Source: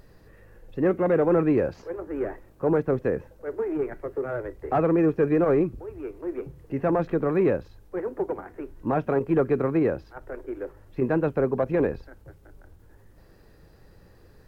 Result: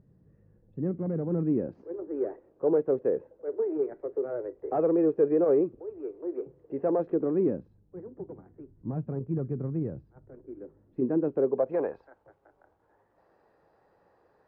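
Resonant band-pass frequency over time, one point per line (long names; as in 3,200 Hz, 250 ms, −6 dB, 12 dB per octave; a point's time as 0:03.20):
resonant band-pass, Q 1.7
0:01.27 160 Hz
0:02.26 450 Hz
0:07.00 450 Hz
0:07.95 140 Hz
0:10.26 140 Hz
0:11.37 370 Hz
0:11.92 810 Hz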